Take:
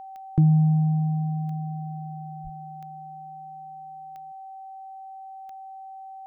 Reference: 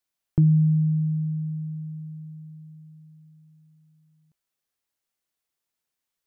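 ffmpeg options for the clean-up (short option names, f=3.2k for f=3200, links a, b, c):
-filter_complex "[0:a]adeclick=t=4,bandreject=f=770:w=30,asplit=3[a][b][c];[a]afade=t=out:st=2.43:d=0.02[d];[b]highpass=f=140:w=0.5412,highpass=f=140:w=1.3066,afade=t=in:st=2.43:d=0.02,afade=t=out:st=2.55:d=0.02[e];[c]afade=t=in:st=2.55:d=0.02[f];[d][e][f]amix=inputs=3:normalize=0"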